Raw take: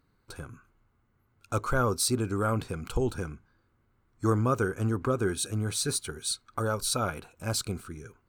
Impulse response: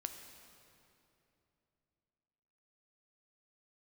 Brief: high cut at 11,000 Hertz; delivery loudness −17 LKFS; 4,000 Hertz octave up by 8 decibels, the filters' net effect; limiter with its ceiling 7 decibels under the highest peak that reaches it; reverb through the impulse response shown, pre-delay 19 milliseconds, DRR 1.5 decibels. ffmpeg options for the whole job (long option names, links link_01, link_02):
-filter_complex "[0:a]lowpass=11000,equalizer=frequency=4000:width_type=o:gain=9,alimiter=limit=-18.5dB:level=0:latency=1,asplit=2[link_01][link_02];[1:a]atrim=start_sample=2205,adelay=19[link_03];[link_02][link_03]afir=irnorm=-1:irlink=0,volume=0.5dB[link_04];[link_01][link_04]amix=inputs=2:normalize=0,volume=10.5dB"